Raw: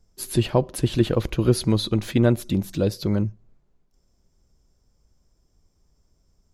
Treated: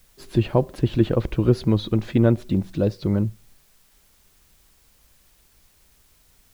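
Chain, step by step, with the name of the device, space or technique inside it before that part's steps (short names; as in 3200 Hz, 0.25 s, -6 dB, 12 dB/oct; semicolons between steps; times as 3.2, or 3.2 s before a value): cassette deck with a dirty head (tape spacing loss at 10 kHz 21 dB; wow and flutter; white noise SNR 36 dB); gain +1.5 dB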